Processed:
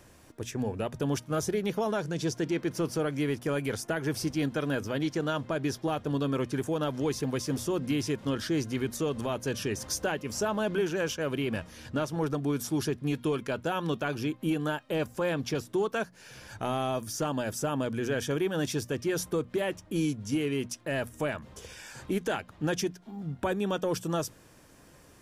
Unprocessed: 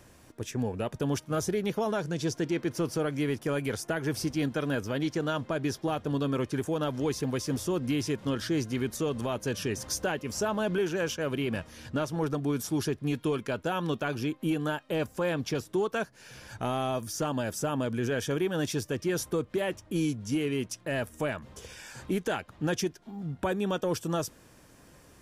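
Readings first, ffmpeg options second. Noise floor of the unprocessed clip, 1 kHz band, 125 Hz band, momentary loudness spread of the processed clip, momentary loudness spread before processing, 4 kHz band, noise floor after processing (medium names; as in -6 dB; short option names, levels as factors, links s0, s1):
-57 dBFS, 0.0 dB, -0.5 dB, 4 LU, 4 LU, 0.0 dB, -56 dBFS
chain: -af "bandreject=f=60:t=h:w=6,bandreject=f=120:t=h:w=6,bandreject=f=180:t=h:w=6,bandreject=f=240:t=h:w=6"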